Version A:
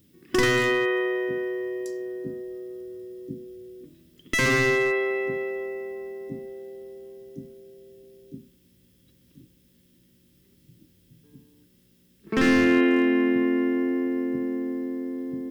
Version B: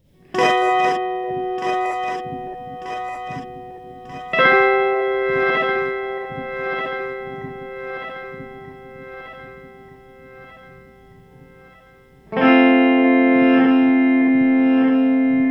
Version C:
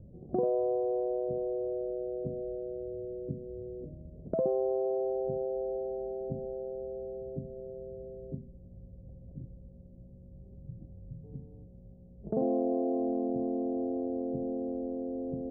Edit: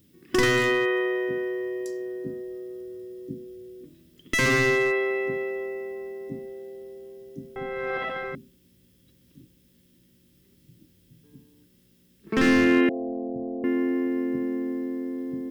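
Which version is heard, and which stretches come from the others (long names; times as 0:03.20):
A
0:07.56–0:08.35: punch in from B
0:12.89–0:13.64: punch in from C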